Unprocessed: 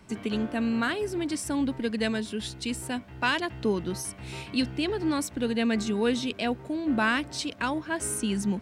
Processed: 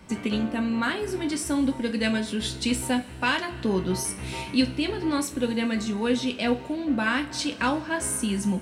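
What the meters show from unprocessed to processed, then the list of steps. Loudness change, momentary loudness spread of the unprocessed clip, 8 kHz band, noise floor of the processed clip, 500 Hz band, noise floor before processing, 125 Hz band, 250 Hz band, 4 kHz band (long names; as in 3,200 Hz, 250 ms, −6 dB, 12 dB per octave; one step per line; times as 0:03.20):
+2.5 dB, 7 LU, +3.5 dB, −39 dBFS, +1.0 dB, −45 dBFS, +3.0 dB, +2.5 dB, +3.0 dB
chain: speech leveller within 4 dB 0.5 s
coupled-rooms reverb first 0.25 s, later 2.8 s, from −22 dB, DRR 3 dB
level +1 dB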